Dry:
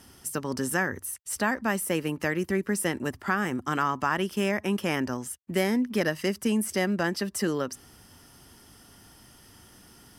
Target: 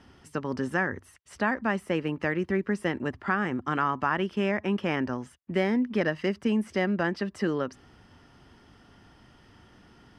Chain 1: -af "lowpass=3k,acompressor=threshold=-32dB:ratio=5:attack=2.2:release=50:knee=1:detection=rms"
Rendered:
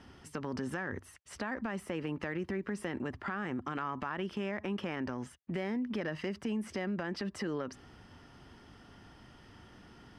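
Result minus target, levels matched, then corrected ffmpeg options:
compressor: peak gain reduction +13 dB
-af "lowpass=3k"

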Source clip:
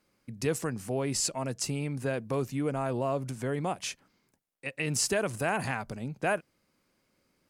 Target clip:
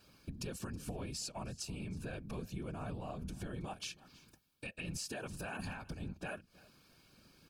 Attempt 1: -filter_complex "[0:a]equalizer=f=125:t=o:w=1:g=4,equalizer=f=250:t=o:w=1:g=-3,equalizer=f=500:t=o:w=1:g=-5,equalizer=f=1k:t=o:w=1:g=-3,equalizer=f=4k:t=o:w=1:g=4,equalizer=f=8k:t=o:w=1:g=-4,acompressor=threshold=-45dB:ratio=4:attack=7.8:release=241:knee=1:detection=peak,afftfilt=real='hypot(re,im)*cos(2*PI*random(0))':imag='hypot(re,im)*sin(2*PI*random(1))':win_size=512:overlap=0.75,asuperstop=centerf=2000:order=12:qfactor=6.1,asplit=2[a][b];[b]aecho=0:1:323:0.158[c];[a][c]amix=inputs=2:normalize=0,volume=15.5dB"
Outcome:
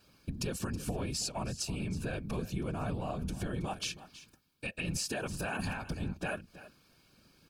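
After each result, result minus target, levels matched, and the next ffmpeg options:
compressor: peak gain reduction -7 dB; echo-to-direct +6 dB
-filter_complex "[0:a]equalizer=f=125:t=o:w=1:g=4,equalizer=f=250:t=o:w=1:g=-3,equalizer=f=500:t=o:w=1:g=-5,equalizer=f=1k:t=o:w=1:g=-3,equalizer=f=4k:t=o:w=1:g=4,equalizer=f=8k:t=o:w=1:g=-4,acompressor=threshold=-54dB:ratio=4:attack=7.8:release=241:knee=1:detection=peak,afftfilt=real='hypot(re,im)*cos(2*PI*random(0))':imag='hypot(re,im)*sin(2*PI*random(1))':win_size=512:overlap=0.75,asuperstop=centerf=2000:order=12:qfactor=6.1,asplit=2[a][b];[b]aecho=0:1:323:0.158[c];[a][c]amix=inputs=2:normalize=0,volume=15.5dB"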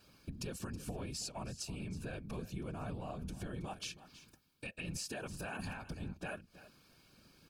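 echo-to-direct +6 dB
-filter_complex "[0:a]equalizer=f=125:t=o:w=1:g=4,equalizer=f=250:t=o:w=1:g=-3,equalizer=f=500:t=o:w=1:g=-5,equalizer=f=1k:t=o:w=1:g=-3,equalizer=f=4k:t=o:w=1:g=4,equalizer=f=8k:t=o:w=1:g=-4,acompressor=threshold=-54dB:ratio=4:attack=7.8:release=241:knee=1:detection=peak,afftfilt=real='hypot(re,im)*cos(2*PI*random(0))':imag='hypot(re,im)*sin(2*PI*random(1))':win_size=512:overlap=0.75,asuperstop=centerf=2000:order=12:qfactor=6.1,asplit=2[a][b];[b]aecho=0:1:323:0.0794[c];[a][c]amix=inputs=2:normalize=0,volume=15.5dB"

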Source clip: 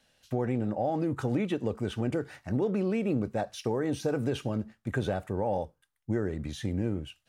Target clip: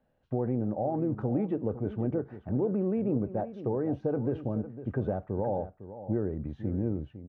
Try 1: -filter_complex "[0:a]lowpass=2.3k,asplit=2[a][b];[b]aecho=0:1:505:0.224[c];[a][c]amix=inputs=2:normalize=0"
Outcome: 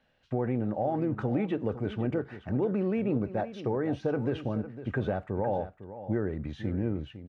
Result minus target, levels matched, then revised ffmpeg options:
2000 Hz band +10.5 dB
-filter_complex "[0:a]lowpass=840,asplit=2[a][b];[b]aecho=0:1:505:0.224[c];[a][c]amix=inputs=2:normalize=0"

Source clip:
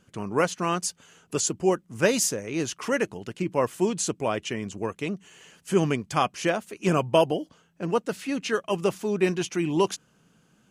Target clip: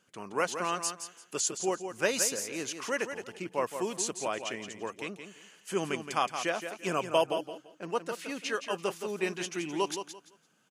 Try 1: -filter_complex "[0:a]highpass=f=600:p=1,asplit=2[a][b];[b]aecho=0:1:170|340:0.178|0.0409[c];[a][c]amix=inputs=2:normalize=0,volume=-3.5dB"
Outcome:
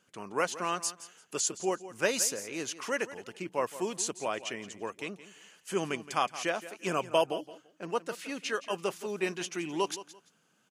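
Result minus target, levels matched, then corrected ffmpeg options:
echo-to-direct -6.5 dB
-filter_complex "[0:a]highpass=f=600:p=1,asplit=2[a][b];[b]aecho=0:1:170|340|510:0.376|0.0864|0.0199[c];[a][c]amix=inputs=2:normalize=0,volume=-3.5dB"

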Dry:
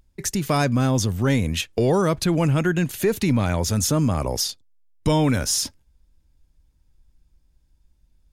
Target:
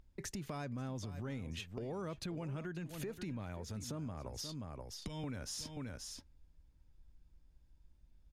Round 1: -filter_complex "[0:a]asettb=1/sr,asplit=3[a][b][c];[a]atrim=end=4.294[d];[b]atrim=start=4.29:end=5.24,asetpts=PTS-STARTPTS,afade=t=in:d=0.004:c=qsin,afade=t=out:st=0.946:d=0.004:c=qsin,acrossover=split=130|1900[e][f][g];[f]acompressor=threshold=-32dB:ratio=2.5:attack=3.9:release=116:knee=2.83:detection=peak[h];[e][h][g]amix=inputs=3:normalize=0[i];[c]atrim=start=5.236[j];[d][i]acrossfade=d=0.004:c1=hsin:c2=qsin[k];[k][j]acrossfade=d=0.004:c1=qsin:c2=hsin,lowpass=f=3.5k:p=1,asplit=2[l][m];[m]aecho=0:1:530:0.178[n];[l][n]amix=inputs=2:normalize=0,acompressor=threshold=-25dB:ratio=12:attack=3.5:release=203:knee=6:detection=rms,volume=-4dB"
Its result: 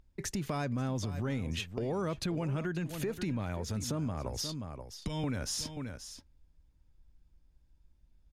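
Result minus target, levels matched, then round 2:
compressor: peak gain reduction -8 dB
-filter_complex "[0:a]asettb=1/sr,asplit=3[a][b][c];[a]atrim=end=4.294[d];[b]atrim=start=4.29:end=5.24,asetpts=PTS-STARTPTS,afade=t=in:d=0.004:c=qsin,afade=t=out:st=0.946:d=0.004:c=qsin,acrossover=split=130|1900[e][f][g];[f]acompressor=threshold=-32dB:ratio=2.5:attack=3.9:release=116:knee=2.83:detection=peak[h];[e][h][g]amix=inputs=3:normalize=0[i];[c]atrim=start=5.236[j];[d][i]acrossfade=d=0.004:c1=hsin:c2=qsin[k];[k][j]acrossfade=d=0.004:c1=qsin:c2=hsin,lowpass=f=3.5k:p=1,asplit=2[l][m];[m]aecho=0:1:530:0.178[n];[l][n]amix=inputs=2:normalize=0,acompressor=threshold=-34dB:ratio=12:attack=3.5:release=203:knee=6:detection=rms,volume=-4dB"

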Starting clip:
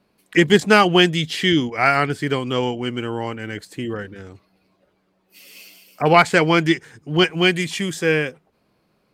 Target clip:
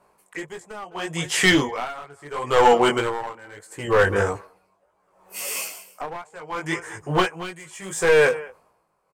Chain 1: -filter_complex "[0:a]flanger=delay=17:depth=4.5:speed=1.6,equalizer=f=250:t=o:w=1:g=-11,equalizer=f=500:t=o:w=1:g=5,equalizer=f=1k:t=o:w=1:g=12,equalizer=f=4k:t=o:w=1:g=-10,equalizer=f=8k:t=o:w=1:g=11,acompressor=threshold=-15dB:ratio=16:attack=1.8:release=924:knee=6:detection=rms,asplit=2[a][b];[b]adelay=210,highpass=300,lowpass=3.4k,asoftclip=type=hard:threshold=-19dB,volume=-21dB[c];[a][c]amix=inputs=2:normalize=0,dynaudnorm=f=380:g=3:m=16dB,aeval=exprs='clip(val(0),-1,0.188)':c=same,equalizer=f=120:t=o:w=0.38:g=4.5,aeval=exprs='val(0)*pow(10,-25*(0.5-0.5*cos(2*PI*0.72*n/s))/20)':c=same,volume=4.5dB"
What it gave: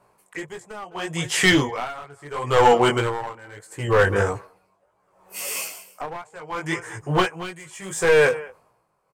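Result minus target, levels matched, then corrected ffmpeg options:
125 Hz band +3.5 dB
-filter_complex "[0:a]flanger=delay=17:depth=4.5:speed=1.6,equalizer=f=250:t=o:w=1:g=-11,equalizer=f=500:t=o:w=1:g=5,equalizer=f=1k:t=o:w=1:g=12,equalizer=f=4k:t=o:w=1:g=-10,equalizer=f=8k:t=o:w=1:g=11,acompressor=threshold=-15dB:ratio=16:attack=1.8:release=924:knee=6:detection=rms,asplit=2[a][b];[b]adelay=210,highpass=300,lowpass=3.4k,asoftclip=type=hard:threshold=-19dB,volume=-21dB[c];[a][c]amix=inputs=2:normalize=0,dynaudnorm=f=380:g=3:m=16dB,aeval=exprs='clip(val(0),-1,0.188)':c=same,equalizer=f=120:t=o:w=0.38:g=-4.5,aeval=exprs='val(0)*pow(10,-25*(0.5-0.5*cos(2*PI*0.72*n/s))/20)':c=same,volume=4.5dB"

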